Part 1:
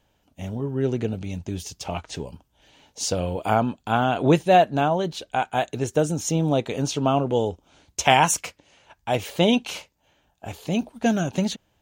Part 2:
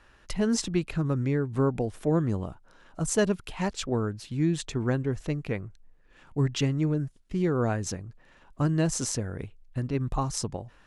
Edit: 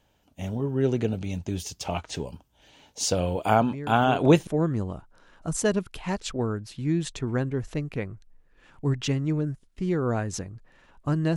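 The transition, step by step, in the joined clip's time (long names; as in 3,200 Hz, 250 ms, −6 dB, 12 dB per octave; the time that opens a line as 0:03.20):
part 1
0:03.60: mix in part 2 from 0:01.13 0.87 s −9 dB
0:04.47: continue with part 2 from 0:02.00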